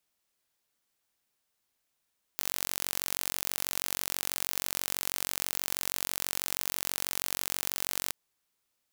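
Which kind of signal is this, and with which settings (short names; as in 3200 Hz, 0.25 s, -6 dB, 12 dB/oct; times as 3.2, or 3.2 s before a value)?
pulse train 46.2/s, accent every 0, -4.5 dBFS 5.72 s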